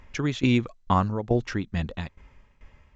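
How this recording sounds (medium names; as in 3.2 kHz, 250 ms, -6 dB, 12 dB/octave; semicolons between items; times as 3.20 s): tremolo saw down 2.3 Hz, depth 85%; SBC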